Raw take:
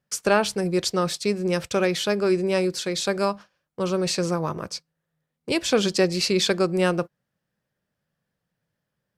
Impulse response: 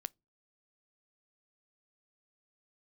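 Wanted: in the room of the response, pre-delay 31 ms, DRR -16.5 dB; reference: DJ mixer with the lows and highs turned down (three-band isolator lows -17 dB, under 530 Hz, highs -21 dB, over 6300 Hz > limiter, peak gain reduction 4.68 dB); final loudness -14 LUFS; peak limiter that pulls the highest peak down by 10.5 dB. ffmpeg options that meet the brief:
-filter_complex "[0:a]alimiter=limit=-18.5dB:level=0:latency=1,asplit=2[a][b];[1:a]atrim=start_sample=2205,adelay=31[c];[b][c]afir=irnorm=-1:irlink=0,volume=19.5dB[d];[a][d]amix=inputs=2:normalize=0,acrossover=split=530 6300:gain=0.141 1 0.0891[e][f][g];[e][f][g]amix=inputs=3:normalize=0,volume=4dB,alimiter=limit=-3dB:level=0:latency=1"

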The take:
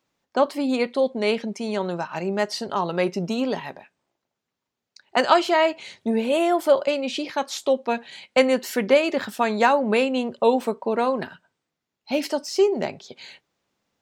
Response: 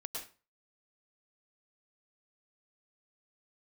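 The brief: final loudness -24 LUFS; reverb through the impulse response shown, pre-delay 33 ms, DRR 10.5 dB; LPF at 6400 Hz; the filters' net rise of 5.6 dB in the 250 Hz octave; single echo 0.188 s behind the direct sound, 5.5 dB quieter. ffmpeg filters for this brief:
-filter_complex "[0:a]lowpass=6.4k,equalizer=f=250:t=o:g=6.5,aecho=1:1:188:0.531,asplit=2[a][b];[1:a]atrim=start_sample=2205,adelay=33[c];[b][c]afir=irnorm=-1:irlink=0,volume=-10dB[d];[a][d]amix=inputs=2:normalize=0,volume=-4.5dB"

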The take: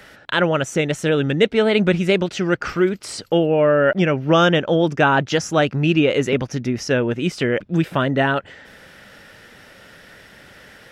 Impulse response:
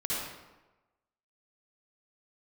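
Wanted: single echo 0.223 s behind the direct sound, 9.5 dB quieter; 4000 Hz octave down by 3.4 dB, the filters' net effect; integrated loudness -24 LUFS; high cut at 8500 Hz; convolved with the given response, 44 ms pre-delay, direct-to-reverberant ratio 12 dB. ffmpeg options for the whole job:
-filter_complex "[0:a]lowpass=8.5k,equalizer=f=4k:t=o:g=-5,aecho=1:1:223:0.335,asplit=2[a][b];[1:a]atrim=start_sample=2205,adelay=44[c];[b][c]afir=irnorm=-1:irlink=0,volume=-18.5dB[d];[a][d]amix=inputs=2:normalize=0,volume=-5.5dB"

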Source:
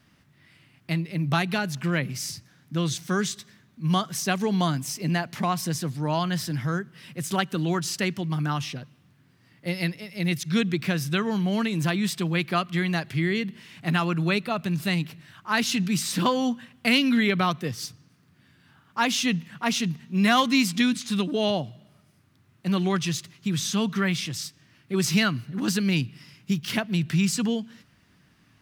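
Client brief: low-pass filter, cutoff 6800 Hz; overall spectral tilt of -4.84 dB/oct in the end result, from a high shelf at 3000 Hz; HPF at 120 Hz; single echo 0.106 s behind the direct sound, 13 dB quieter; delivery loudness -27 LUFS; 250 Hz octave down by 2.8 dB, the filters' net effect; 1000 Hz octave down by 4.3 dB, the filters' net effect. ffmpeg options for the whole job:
-af "highpass=120,lowpass=6.8k,equalizer=f=250:t=o:g=-3,equalizer=f=1k:t=o:g=-4.5,highshelf=f=3k:g=-8,aecho=1:1:106:0.224,volume=2dB"

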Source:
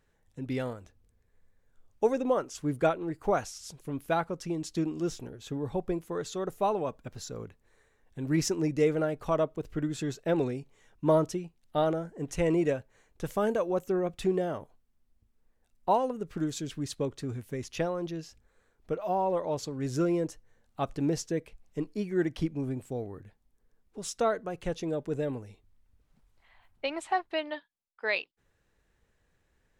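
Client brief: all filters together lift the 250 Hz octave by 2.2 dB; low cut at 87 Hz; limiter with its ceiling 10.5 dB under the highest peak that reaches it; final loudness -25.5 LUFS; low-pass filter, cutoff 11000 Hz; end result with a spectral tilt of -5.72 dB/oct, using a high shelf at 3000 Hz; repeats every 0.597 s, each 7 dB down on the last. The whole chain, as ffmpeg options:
-af "highpass=87,lowpass=11k,equalizer=f=250:t=o:g=3.5,highshelf=f=3k:g=-7.5,alimiter=limit=-22dB:level=0:latency=1,aecho=1:1:597|1194|1791|2388|2985:0.447|0.201|0.0905|0.0407|0.0183,volume=7.5dB"

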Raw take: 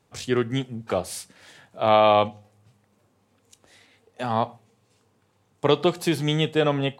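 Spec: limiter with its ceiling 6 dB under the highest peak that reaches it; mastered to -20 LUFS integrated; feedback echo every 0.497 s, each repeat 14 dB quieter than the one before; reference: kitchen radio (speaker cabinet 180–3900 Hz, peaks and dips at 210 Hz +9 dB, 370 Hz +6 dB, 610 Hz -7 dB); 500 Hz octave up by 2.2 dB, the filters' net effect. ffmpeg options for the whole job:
-af "equalizer=f=500:t=o:g=3.5,alimiter=limit=-10.5dB:level=0:latency=1,highpass=180,equalizer=f=210:t=q:w=4:g=9,equalizer=f=370:t=q:w=4:g=6,equalizer=f=610:t=q:w=4:g=-7,lowpass=f=3.9k:w=0.5412,lowpass=f=3.9k:w=1.3066,aecho=1:1:497|994:0.2|0.0399,volume=3.5dB"

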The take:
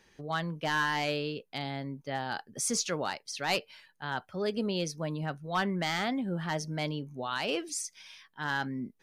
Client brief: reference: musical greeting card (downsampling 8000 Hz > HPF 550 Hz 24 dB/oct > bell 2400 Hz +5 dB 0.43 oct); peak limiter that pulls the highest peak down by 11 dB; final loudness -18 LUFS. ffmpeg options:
-af "alimiter=level_in=8dB:limit=-24dB:level=0:latency=1,volume=-8dB,aresample=8000,aresample=44100,highpass=f=550:w=0.5412,highpass=f=550:w=1.3066,equalizer=f=2.4k:t=o:w=0.43:g=5,volume=26.5dB"

